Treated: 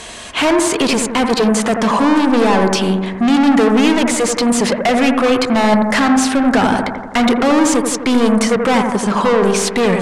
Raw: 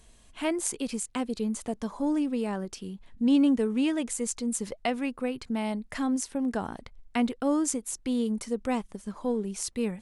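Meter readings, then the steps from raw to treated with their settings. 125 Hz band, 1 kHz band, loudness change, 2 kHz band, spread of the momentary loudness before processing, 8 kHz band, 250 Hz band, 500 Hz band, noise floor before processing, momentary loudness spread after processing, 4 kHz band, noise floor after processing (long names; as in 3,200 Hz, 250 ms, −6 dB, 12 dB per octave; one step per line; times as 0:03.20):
can't be measured, +21.5 dB, +15.5 dB, +21.5 dB, 9 LU, +13.0 dB, +14.0 dB, +18.0 dB, −56 dBFS, 4 LU, +20.5 dB, −27 dBFS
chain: mid-hump overdrive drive 36 dB, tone 4,400 Hz, clips at −11 dBFS
Bessel low-pass filter 9,900 Hz, order 4
bucket-brigade delay 84 ms, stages 1,024, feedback 64%, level −5 dB
level +4.5 dB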